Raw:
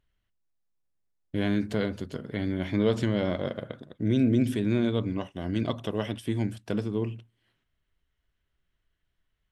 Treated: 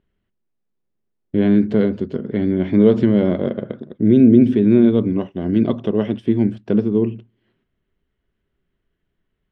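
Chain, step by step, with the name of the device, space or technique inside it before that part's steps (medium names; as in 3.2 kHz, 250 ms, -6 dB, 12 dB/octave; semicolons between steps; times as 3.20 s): inside a cardboard box (low-pass 3.3 kHz 12 dB/octave; small resonant body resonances 220/370 Hz, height 12 dB, ringing for 25 ms); trim +2 dB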